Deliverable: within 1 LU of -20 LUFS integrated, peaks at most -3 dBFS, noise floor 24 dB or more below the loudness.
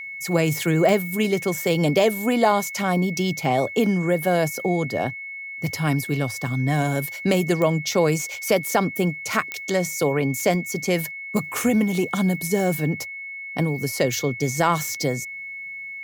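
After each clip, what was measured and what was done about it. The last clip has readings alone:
clicks found 4; steady tone 2.2 kHz; tone level -32 dBFS; loudness -23.0 LUFS; peak level -6.0 dBFS; loudness target -20.0 LUFS
-> de-click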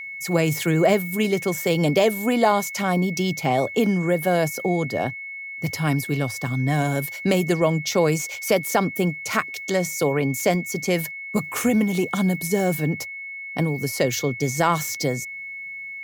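clicks found 0; steady tone 2.2 kHz; tone level -32 dBFS
-> band-stop 2.2 kHz, Q 30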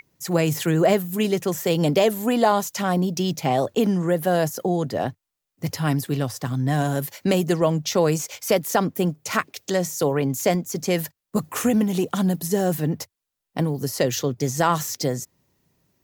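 steady tone not found; loudness -23.0 LUFS; peak level -6.5 dBFS; loudness target -20.0 LUFS
-> trim +3 dB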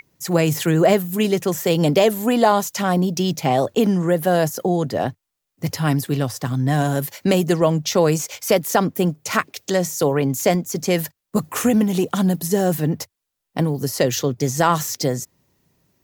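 loudness -20.0 LUFS; peak level -3.5 dBFS; noise floor -80 dBFS

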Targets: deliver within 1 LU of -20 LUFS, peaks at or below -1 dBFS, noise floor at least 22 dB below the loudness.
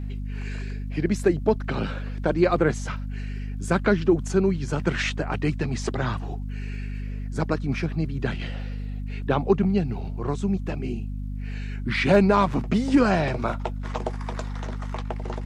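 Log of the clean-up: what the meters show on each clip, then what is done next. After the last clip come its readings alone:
tick rate 49 per s; hum 50 Hz; highest harmonic 250 Hz; hum level -29 dBFS; loudness -26.0 LUFS; peak level -6.5 dBFS; loudness target -20.0 LUFS
-> de-click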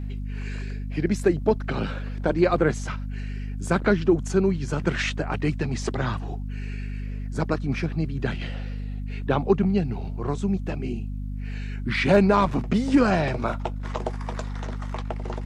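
tick rate 0 per s; hum 50 Hz; highest harmonic 250 Hz; hum level -29 dBFS
-> hum notches 50/100/150/200/250 Hz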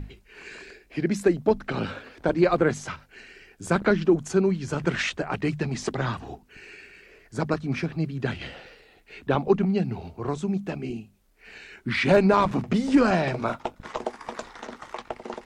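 hum not found; loudness -25.5 LUFS; peak level -7.0 dBFS; loudness target -20.0 LUFS
-> trim +5.5 dB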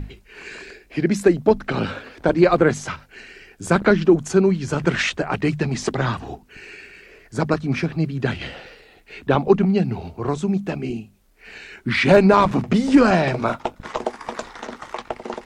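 loudness -20.0 LUFS; peak level -1.5 dBFS; noise floor -52 dBFS

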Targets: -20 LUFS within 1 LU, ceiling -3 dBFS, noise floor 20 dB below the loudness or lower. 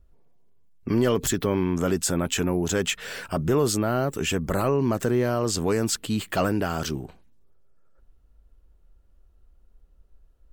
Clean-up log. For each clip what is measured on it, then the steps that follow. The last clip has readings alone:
loudness -25.0 LUFS; peak level -13.0 dBFS; loudness target -20.0 LUFS
-> trim +5 dB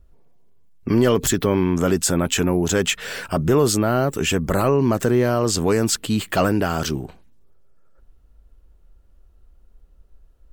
loudness -20.0 LUFS; peak level -8.0 dBFS; noise floor -54 dBFS

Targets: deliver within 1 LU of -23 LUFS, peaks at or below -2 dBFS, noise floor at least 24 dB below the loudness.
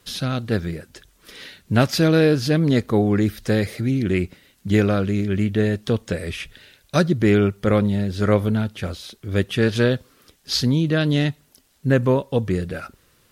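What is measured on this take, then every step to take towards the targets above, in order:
tick rate 23 per s; loudness -21.0 LUFS; peak level -5.5 dBFS; loudness target -23.0 LUFS
-> de-click; trim -2 dB

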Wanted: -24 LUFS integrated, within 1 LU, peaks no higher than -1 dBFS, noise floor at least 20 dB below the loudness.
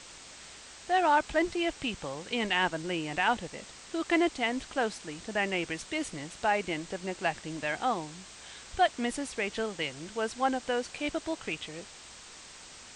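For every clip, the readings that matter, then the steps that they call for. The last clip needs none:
noise floor -49 dBFS; noise floor target -51 dBFS; loudness -31.0 LUFS; peak level -15.0 dBFS; loudness target -24.0 LUFS
-> noise reduction 6 dB, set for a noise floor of -49 dBFS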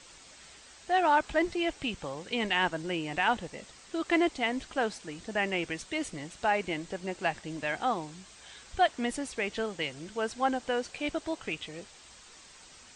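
noise floor -54 dBFS; loudness -31.0 LUFS; peak level -15.0 dBFS; loudness target -24.0 LUFS
-> trim +7 dB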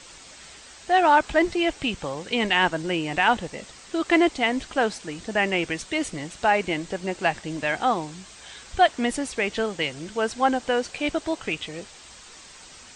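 loudness -24.0 LUFS; peak level -8.0 dBFS; noise floor -47 dBFS

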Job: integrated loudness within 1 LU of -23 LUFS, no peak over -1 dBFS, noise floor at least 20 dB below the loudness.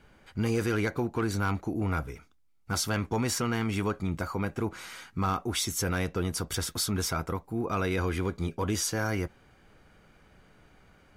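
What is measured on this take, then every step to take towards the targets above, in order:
clipped samples 0.2%; clipping level -20.5 dBFS; loudness -30.5 LUFS; peak level -20.5 dBFS; loudness target -23.0 LUFS
-> clip repair -20.5 dBFS; trim +7.5 dB

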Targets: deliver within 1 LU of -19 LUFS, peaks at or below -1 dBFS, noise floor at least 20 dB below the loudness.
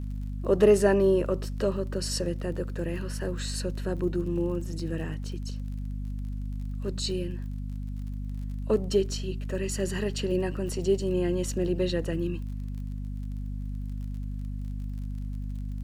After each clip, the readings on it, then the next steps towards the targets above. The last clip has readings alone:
tick rate 37 per s; hum 50 Hz; highest harmonic 250 Hz; hum level -31 dBFS; loudness -30.0 LUFS; peak level -8.5 dBFS; loudness target -19.0 LUFS
-> de-click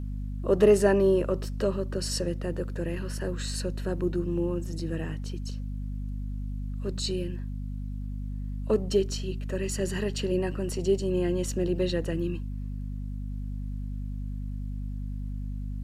tick rate 0.063 per s; hum 50 Hz; highest harmonic 250 Hz; hum level -31 dBFS
-> hum notches 50/100/150/200/250 Hz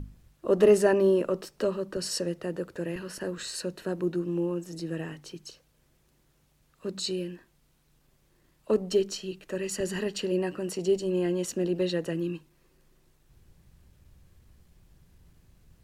hum not found; loudness -29.0 LUFS; peak level -9.5 dBFS; loudness target -19.0 LUFS
-> trim +10 dB; peak limiter -1 dBFS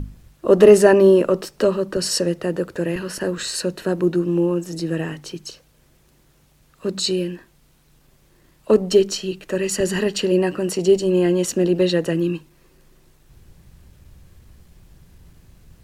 loudness -19.0 LUFS; peak level -1.0 dBFS; noise floor -57 dBFS

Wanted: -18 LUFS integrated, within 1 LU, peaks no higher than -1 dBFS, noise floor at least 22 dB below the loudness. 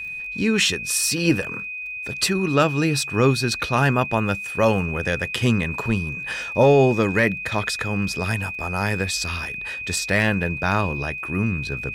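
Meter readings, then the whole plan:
tick rate 27 per s; steady tone 2.5 kHz; tone level -29 dBFS; loudness -21.5 LUFS; peak level -7.0 dBFS; loudness target -18.0 LUFS
-> de-click; band-stop 2.5 kHz, Q 30; trim +3.5 dB

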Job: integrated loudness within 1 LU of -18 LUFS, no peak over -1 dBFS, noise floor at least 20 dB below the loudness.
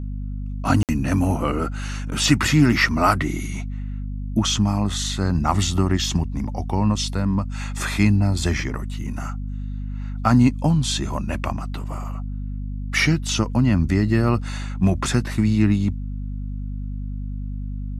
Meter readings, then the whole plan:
dropouts 1; longest dropout 58 ms; hum 50 Hz; highest harmonic 250 Hz; hum level -26 dBFS; loudness -22.5 LUFS; peak level -1.5 dBFS; loudness target -18.0 LUFS
-> interpolate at 0.83 s, 58 ms; de-hum 50 Hz, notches 5; trim +4.5 dB; peak limiter -1 dBFS

